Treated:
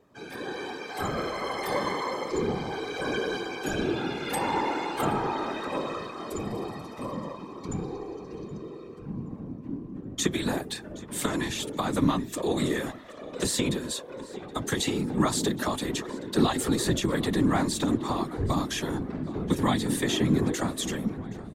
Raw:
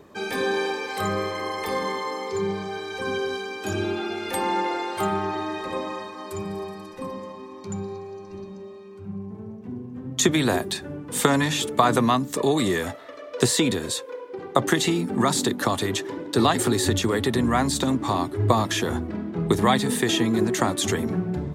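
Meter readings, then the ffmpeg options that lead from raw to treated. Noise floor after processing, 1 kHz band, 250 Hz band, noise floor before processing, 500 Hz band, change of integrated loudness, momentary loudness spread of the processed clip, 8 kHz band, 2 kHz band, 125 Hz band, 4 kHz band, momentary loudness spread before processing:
−43 dBFS, −6.0 dB, −3.0 dB, −41 dBFS, −5.5 dB, −5.0 dB, 12 LU, −5.5 dB, −5.5 dB, −4.0 dB, −5.5 dB, 15 LU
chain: -filter_complex "[0:a]acrossover=split=240|2900[link_01][link_02][link_03];[link_02]alimiter=limit=-12dB:level=0:latency=1:release=420[link_04];[link_01][link_04][link_03]amix=inputs=3:normalize=0,lowshelf=frequency=170:gain=-4,dynaudnorm=framelen=400:gausssize=5:maxgain=11.5dB,equalizer=frequency=230:width=4.2:gain=8,asplit=2[link_05][link_06];[link_06]adelay=772,lowpass=frequency=3800:poles=1,volume=-17dB,asplit=2[link_07][link_08];[link_08]adelay=772,lowpass=frequency=3800:poles=1,volume=0.52,asplit=2[link_09][link_10];[link_10]adelay=772,lowpass=frequency=3800:poles=1,volume=0.52,asplit=2[link_11][link_12];[link_12]adelay=772,lowpass=frequency=3800:poles=1,volume=0.52,asplit=2[link_13][link_14];[link_14]adelay=772,lowpass=frequency=3800:poles=1,volume=0.52[link_15];[link_07][link_09][link_11][link_13][link_15]amix=inputs=5:normalize=0[link_16];[link_05][link_16]amix=inputs=2:normalize=0,afftfilt=real='hypot(re,im)*cos(2*PI*random(0))':imag='hypot(re,im)*sin(2*PI*random(1))':win_size=512:overlap=0.75,volume=-6.5dB"

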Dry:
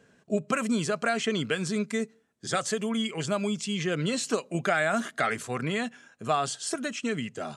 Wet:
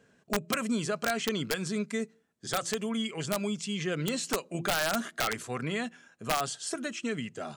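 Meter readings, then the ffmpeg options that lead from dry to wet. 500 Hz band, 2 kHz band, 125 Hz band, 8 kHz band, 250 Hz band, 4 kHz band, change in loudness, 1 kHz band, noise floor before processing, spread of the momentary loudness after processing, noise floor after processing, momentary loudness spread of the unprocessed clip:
−4.0 dB, −3.5 dB, −3.5 dB, −1.0 dB, −3.5 dB, −0.5 dB, −3.0 dB, −3.5 dB, −63 dBFS, 5 LU, −67 dBFS, 5 LU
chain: -af "bandreject=frequency=170.4:width_type=h:width=4,bandreject=frequency=340.8:width_type=h:width=4,aeval=exprs='(mod(6.68*val(0)+1,2)-1)/6.68':channel_layout=same,volume=-3dB"

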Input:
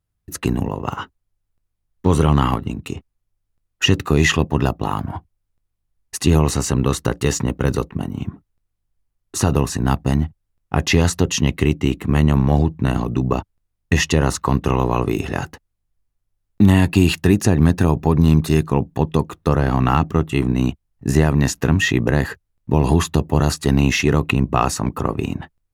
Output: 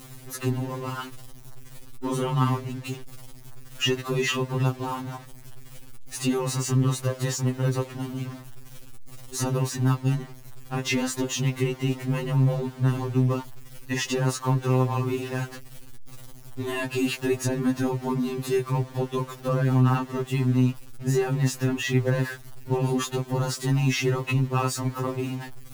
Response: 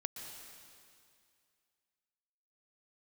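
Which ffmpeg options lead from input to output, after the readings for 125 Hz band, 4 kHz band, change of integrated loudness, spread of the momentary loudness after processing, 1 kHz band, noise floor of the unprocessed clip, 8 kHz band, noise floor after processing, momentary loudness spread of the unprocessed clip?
−6.5 dB, −6.5 dB, −7.5 dB, 11 LU, −8.0 dB, −75 dBFS, −6.5 dB, −44 dBFS, 12 LU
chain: -af "aeval=exprs='val(0)+0.5*0.0501*sgn(val(0))':channel_layout=same,afftfilt=real='re*2.45*eq(mod(b,6),0)':imag='im*2.45*eq(mod(b,6),0)':win_size=2048:overlap=0.75,volume=-6.5dB"

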